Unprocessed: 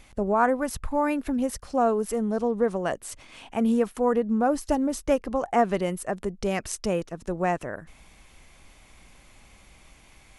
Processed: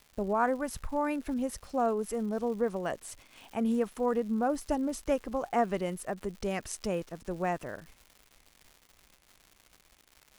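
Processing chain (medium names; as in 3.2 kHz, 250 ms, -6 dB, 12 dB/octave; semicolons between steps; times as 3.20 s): expander -43 dBFS; crackle 240 per s -37 dBFS; trim -6 dB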